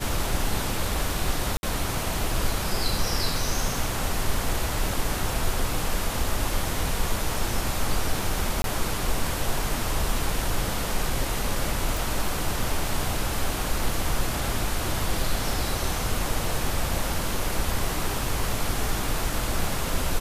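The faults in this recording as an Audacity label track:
1.570000	1.630000	dropout 61 ms
8.620000	8.640000	dropout 22 ms
11.970000	11.970000	pop

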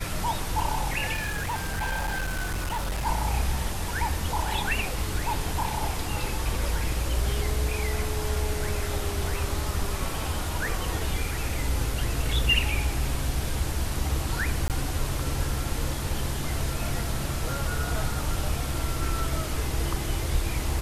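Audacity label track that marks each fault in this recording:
1.130000	3.070000	clipped -25.5 dBFS
14.680000	14.700000	dropout 18 ms

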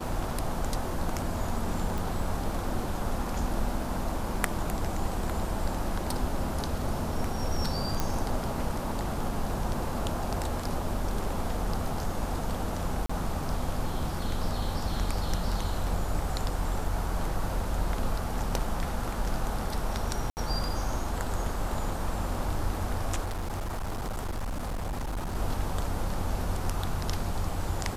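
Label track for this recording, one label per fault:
1.980000	1.980000	pop
8.000000	8.000000	pop
13.060000	13.100000	dropout 35 ms
20.300000	20.370000	dropout 69 ms
23.240000	25.360000	clipped -29 dBFS

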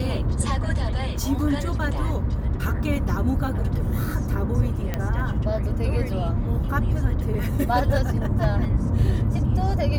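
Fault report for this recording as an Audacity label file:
4.940000	4.940000	pop -12 dBFS

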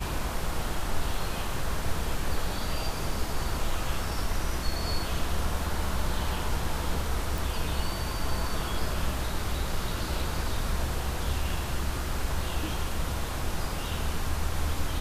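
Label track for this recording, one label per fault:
7.380000	7.380000	pop

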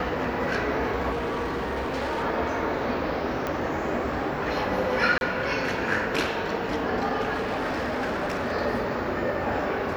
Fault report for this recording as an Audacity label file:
1.110000	2.240000	clipped -25 dBFS
3.470000	3.470000	pop -15 dBFS
5.180000	5.210000	dropout 31 ms
7.330000	8.530000	clipped -24 dBFS

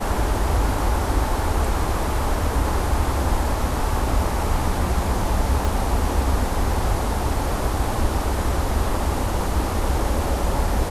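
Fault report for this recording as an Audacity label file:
5.650000	5.650000	pop

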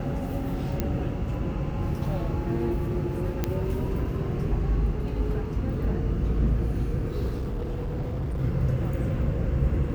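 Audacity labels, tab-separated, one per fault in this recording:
0.800000	0.800000	pop -13 dBFS
3.440000	3.440000	pop -12 dBFS
7.370000	8.410000	clipped -26 dBFS

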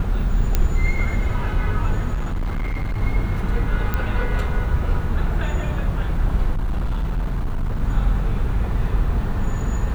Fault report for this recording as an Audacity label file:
0.550000	0.550000	pop -5 dBFS
2.130000	3.020000	clipped -20 dBFS
3.940000	3.940000	pop -10 dBFS
6.540000	7.810000	clipped -18.5 dBFS

